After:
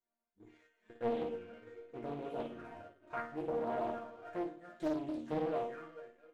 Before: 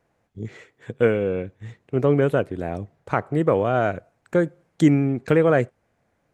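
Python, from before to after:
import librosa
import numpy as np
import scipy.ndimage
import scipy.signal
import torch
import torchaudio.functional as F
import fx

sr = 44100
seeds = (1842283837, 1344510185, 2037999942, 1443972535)

p1 = fx.reverse_delay_fb(x, sr, ms=226, feedback_pct=43, wet_db=-8.5)
p2 = fx.high_shelf(p1, sr, hz=2400.0, db=-11.0)
p3 = fx.env_flanger(p2, sr, rest_ms=5.2, full_db=-16.5)
p4 = fx.low_shelf(p3, sr, hz=480.0, db=-9.0)
p5 = fx.resonator_bank(p4, sr, root=58, chord='sus4', decay_s=0.37)
p6 = p5 + fx.room_flutter(p5, sr, wall_m=9.5, rt60_s=0.49, dry=0)
p7 = fx.leveller(p6, sr, passes=1)
p8 = fx.doppler_dist(p7, sr, depth_ms=0.77)
y = F.gain(torch.from_numpy(p8), 4.0).numpy()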